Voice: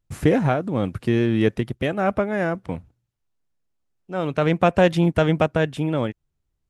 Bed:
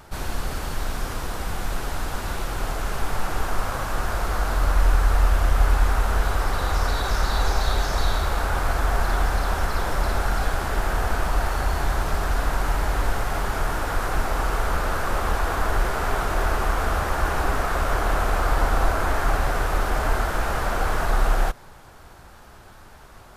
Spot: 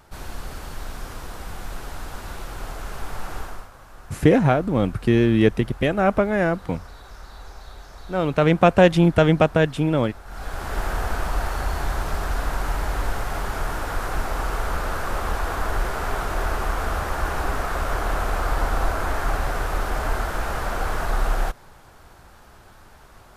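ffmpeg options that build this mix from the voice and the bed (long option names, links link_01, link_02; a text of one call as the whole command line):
ffmpeg -i stem1.wav -i stem2.wav -filter_complex "[0:a]adelay=4000,volume=2.5dB[link_01];[1:a]volume=11dB,afade=type=out:start_time=3.37:duration=0.32:silence=0.223872,afade=type=in:start_time=10.25:duration=0.55:silence=0.141254[link_02];[link_01][link_02]amix=inputs=2:normalize=0" out.wav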